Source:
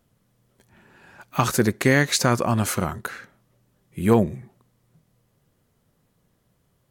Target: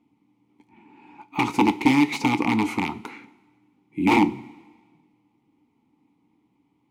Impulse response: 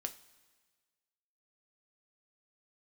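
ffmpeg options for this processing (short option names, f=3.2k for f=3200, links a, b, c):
-filter_complex "[0:a]aeval=exprs='(mod(4.22*val(0)+1,2)-1)/4.22':c=same,asplit=3[a][b][c];[a]bandpass=f=300:t=q:w=8,volume=0dB[d];[b]bandpass=f=870:t=q:w=8,volume=-6dB[e];[c]bandpass=f=2.24k:t=q:w=8,volume=-9dB[f];[d][e][f]amix=inputs=3:normalize=0,asplit=2[g][h];[1:a]atrim=start_sample=2205,highshelf=f=11k:g=5.5[i];[h][i]afir=irnorm=-1:irlink=0,volume=7dB[j];[g][j]amix=inputs=2:normalize=0,volume=6dB"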